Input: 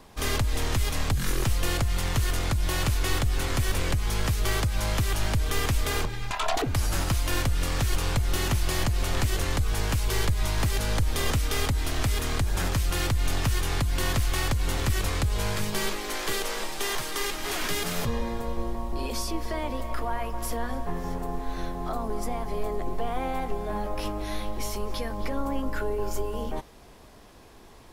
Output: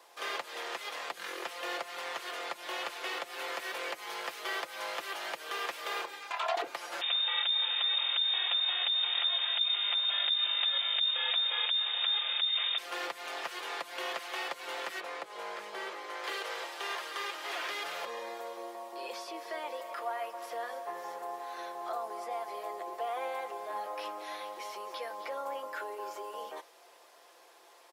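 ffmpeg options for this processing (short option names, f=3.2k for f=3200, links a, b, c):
-filter_complex "[0:a]asettb=1/sr,asplit=3[a][b][c];[a]atrim=end=3.304[d];[b]atrim=start=3.3:end=6.19,asetpts=PTS-STARTPTS,afade=t=in:d=0.004:c=qsin,afade=t=out:st=2.886:d=0.004:c=qsin,highshelf=f=9.8k:g=10[e];[c]atrim=start=6.186[f];[d][e]acrossfade=d=0.004:c1=hsin:c2=qsin[g];[g][f]acrossfade=d=0.004:c1=qsin:c2=hsin,asettb=1/sr,asplit=3[h][i][j];[h]atrim=end=7.014[k];[i]atrim=start=7.01:end=12.78,asetpts=PTS-STARTPTS,afade=t=in:d=0.004:c=qsin,afade=t=out:st=5.766:d=0.004:c=qsin,lowpass=f=3.1k:t=q:w=0.5098,lowpass=f=3.1k:t=q:w=0.6013,lowpass=f=3.1k:t=q:w=0.9,lowpass=f=3.1k:t=q:w=2.563,afreqshift=-3700[l];[j]atrim=start=12.776[m];[k][l]acrossfade=d=0.004:c1=hsin:c2=qsin[n];[n][m]acrossfade=d=0.004:c1=qsin:c2=hsin,asettb=1/sr,asplit=3[o][p][q];[o]atrim=end=15.004[r];[p]atrim=start=15:end=16.24,asetpts=PTS-STARTPTS,afade=t=in:d=0.004:c=qsin,afade=t=out:st=1.236:d=0.004:c=qsin,lowpass=f=1.5k:p=1[s];[q]atrim=start=16.236[t];[r][s]acrossfade=d=0.004:c1=hsin:c2=qsin[u];[u][t]acrossfade=d=0.004:c1=qsin:c2=hsin,highpass=f=470:w=0.5412,highpass=f=470:w=1.3066,acrossover=split=4100[v][w];[w]acompressor=threshold=-51dB:ratio=4:attack=1:release=60[x];[v][x]amix=inputs=2:normalize=0,aecho=1:1:5.8:0.47,volume=-4.5dB"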